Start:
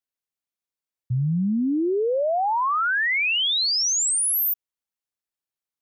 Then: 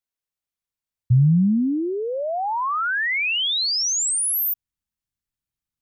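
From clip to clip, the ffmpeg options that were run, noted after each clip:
ffmpeg -i in.wav -af "asubboost=boost=10:cutoff=160" out.wav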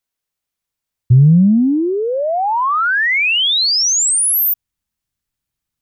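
ffmpeg -i in.wav -af "acontrast=48,volume=2dB" out.wav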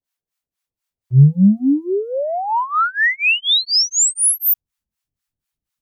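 ffmpeg -i in.wav -filter_complex "[0:a]acrossover=split=670[link_01][link_02];[link_01]aeval=exprs='val(0)*(1-1/2+1/2*cos(2*PI*4.1*n/s))':channel_layout=same[link_03];[link_02]aeval=exprs='val(0)*(1-1/2-1/2*cos(2*PI*4.1*n/s))':channel_layout=same[link_04];[link_03][link_04]amix=inputs=2:normalize=0,volume=2dB" out.wav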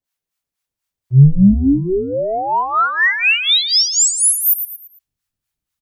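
ffmpeg -i in.wav -filter_complex "[0:a]asplit=5[link_01][link_02][link_03][link_04][link_05];[link_02]adelay=113,afreqshift=-130,volume=-9.5dB[link_06];[link_03]adelay=226,afreqshift=-260,volume=-17.9dB[link_07];[link_04]adelay=339,afreqshift=-390,volume=-26.3dB[link_08];[link_05]adelay=452,afreqshift=-520,volume=-34.7dB[link_09];[link_01][link_06][link_07][link_08][link_09]amix=inputs=5:normalize=0,volume=1.5dB" out.wav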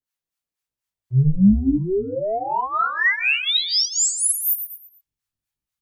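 ffmpeg -i in.wav -af "flanger=delay=17:depth=3.7:speed=2.5,volume=-3dB" out.wav

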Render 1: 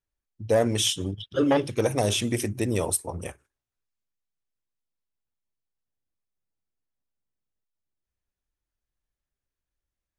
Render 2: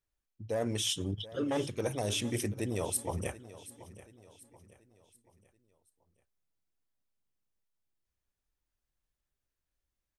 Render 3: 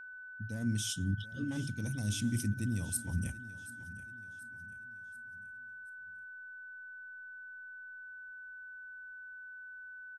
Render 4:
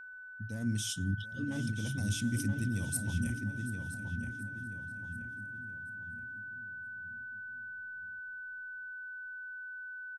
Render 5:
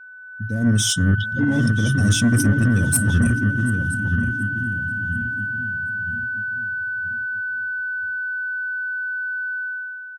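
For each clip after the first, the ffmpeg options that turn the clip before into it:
ffmpeg -i in.wav -af "areverse,acompressor=threshold=-30dB:ratio=6,areverse,aecho=1:1:732|1464|2196|2928:0.141|0.0593|0.0249|0.0105" out.wav
ffmpeg -i in.wav -af "firequalizer=gain_entry='entry(240,0);entry(400,-24);entry(2200,-15);entry(5000,-6)':delay=0.05:min_phase=1,aeval=exprs='val(0)+0.00355*sin(2*PI*1500*n/s)':channel_layout=same,volume=3.5dB" out.wav
ffmpeg -i in.wav -filter_complex "[0:a]asplit=2[link_01][link_02];[link_02]adelay=976,lowpass=frequency=2500:poles=1,volume=-5dB,asplit=2[link_03][link_04];[link_04]adelay=976,lowpass=frequency=2500:poles=1,volume=0.42,asplit=2[link_05][link_06];[link_06]adelay=976,lowpass=frequency=2500:poles=1,volume=0.42,asplit=2[link_07][link_08];[link_08]adelay=976,lowpass=frequency=2500:poles=1,volume=0.42,asplit=2[link_09][link_10];[link_10]adelay=976,lowpass=frequency=2500:poles=1,volume=0.42[link_11];[link_01][link_03][link_05][link_07][link_09][link_11]amix=inputs=6:normalize=0" out.wav
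ffmpeg -i in.wav -af "afftdn=noise_reduction=12:noise_floor=-46,dynaudnorm=framelen=110:gausssize=9:maxgain=11dB,asoftclip=type=tanh:threshold=-16.5dB,volume=7dB" out.wav

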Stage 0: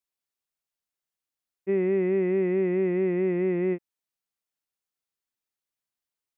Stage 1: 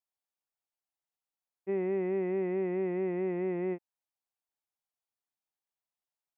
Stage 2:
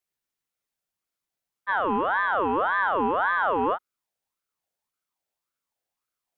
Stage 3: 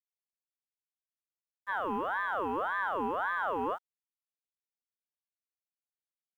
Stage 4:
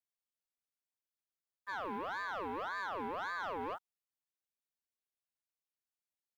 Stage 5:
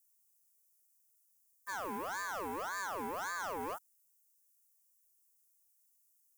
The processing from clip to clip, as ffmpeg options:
ffmpeg -i in.wav -af "equalizer=frequency=800:width_type=o:width=0.96:gain=10,volume=-8.5dB" out.wav
ffmpeg -i in.wav -af "asubboost=boost=5.5:cutoff=210,aeval=exprs='val(0)*sin(2*PI*1000*n/s+1000*0.4/1.8*sin(2*PI*1.8*n/s))':channel_layout=same,volume=9dB" out.wav
ffmpeg -i in.wav -af "acrusher=bits=8:mix=0:aa=0.5,volume=-8.5dB" out.wav
ffmpeg -i in.wav -af "asoftclip=type=tanh:threshold=-30.5dB,volume=-3.5dB" out.wav
ffmpeg -i in.wav -af "aexciter=amount=13.5:drive=2.5:freq=5600" out.wav

